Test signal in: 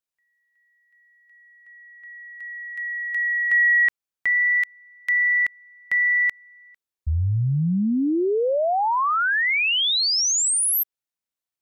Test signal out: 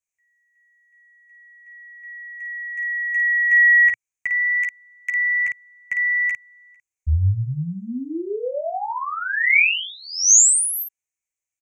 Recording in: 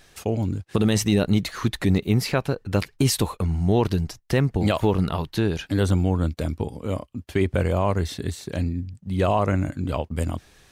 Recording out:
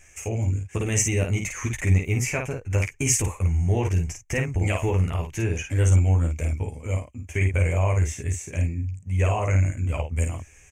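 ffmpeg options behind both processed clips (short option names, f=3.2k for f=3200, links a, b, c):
-af "firequalizer=gain_entry='entry(110,0);entry(170,-11);entry(490,-7);entry(1400,-9);entry(2300,6);entry(4000,-26);entry(6400,9);entry(11000,-7)':delay=0.05:min_phase=1,aecho=1:1:12|53:0.631|0.596"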